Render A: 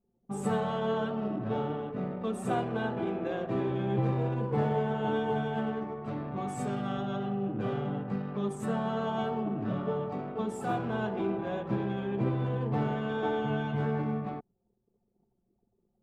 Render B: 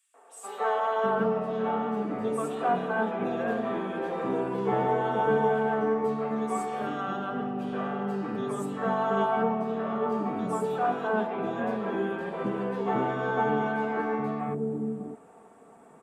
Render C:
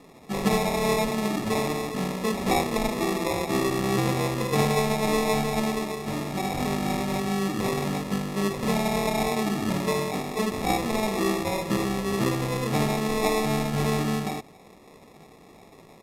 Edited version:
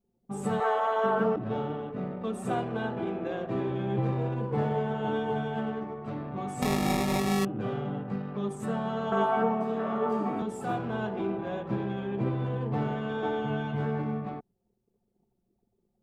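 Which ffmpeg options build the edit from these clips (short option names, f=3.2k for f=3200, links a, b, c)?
-filter_complex "[1:a]asplit=2[a][b];[0:a]asplit=4[c][d][e][f];[c]atrim=end=0.602[g];[a]atrim=start=0.598:end=1.362[h];[d]atrim=start=1.358:end=6.622[i];[2:a]atrim=start=6.618:end=7.452[j];[e]atrim=start=7.448:end=9.122[k];[b]atrim=start=9.118:end=10.422[l];[f]atrim=start=10.418[m];[g][h]acrossfade=d=0.004:c1=hsin:c2=hsin[n];[n][i]acrossfade=d=0.004:c1=hsin:c2=hsin[o];[o][j]acrossfade=d=0.004:c1=hsin:c2=hsin[p];[p][k]acrossfade=d=0.004:c1=hsin:c2=hsin[q];[q][l]acrossfade=d=0.004:c1=hsin:c2=hsin[r];[r][m]acrossfade=d=0.004:c1=hsin:c2=hsin"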